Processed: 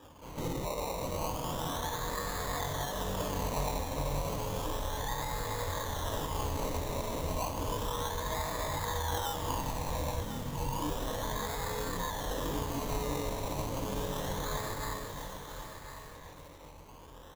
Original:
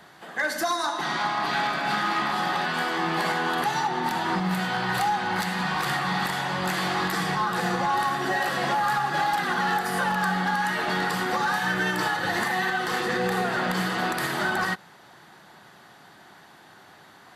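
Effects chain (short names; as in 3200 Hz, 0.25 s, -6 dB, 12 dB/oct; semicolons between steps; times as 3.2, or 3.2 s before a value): octaver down 2 oct, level -2 dB; limiter -21.5 dBFS, peak gain reduction 5.5 dB; plate-style reverb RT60 2.3 s, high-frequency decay 0.85×, pre-delay 0.105 s, DRR 2.5 dB; spectral delete 10.21–10.57, 460–2000 Hz; compressor 10:1, threshold -27 dBFS, peak gain reduction 7 dB; formant-preserving pitch shift -9.5 st; chorus voices 6, 0.2 Hz, delay 22 ms, depth 1.6 ms; decimation with a swept rate 21×, swing 60% 0.32 Hz; ripple EQ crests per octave 1.1, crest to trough 7 dB; echo 1.051 s -11 dB; dynamic EQ 1800 Hz, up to -6 dB, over -49 dBFS, Q 0.83; lo-fi delay 0.399 s, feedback 80%, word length 7-bit, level -12.5 dB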